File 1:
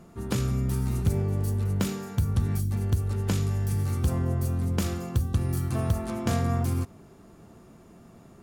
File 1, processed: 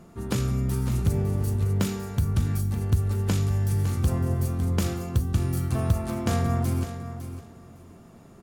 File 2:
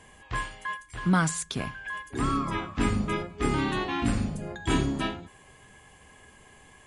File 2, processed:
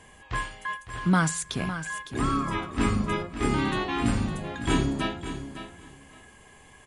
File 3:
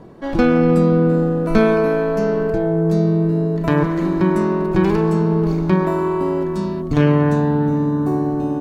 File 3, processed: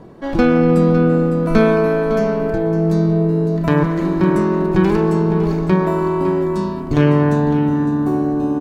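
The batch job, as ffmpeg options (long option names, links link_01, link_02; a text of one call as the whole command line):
ffmpeg -i in.wav -af "aecho=1:1:557|1114:0.282|0.0479,volume=1dB" out.wav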